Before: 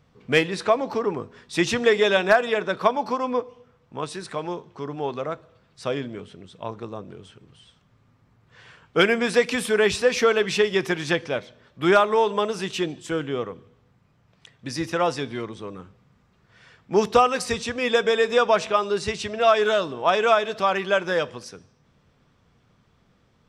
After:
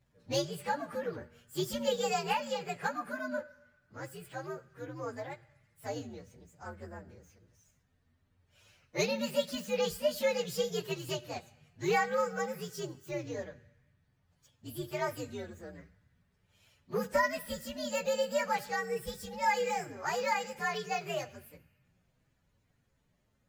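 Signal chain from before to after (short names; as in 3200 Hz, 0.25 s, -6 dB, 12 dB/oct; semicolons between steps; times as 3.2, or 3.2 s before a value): inharmonic rescaling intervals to 127%; on a send: elliptic band-stop 150–1500 Hz + reverb RT60 2.0 s, pre-delay 35 ms, DRR 18.5 dB; on the sum: gain -9 dB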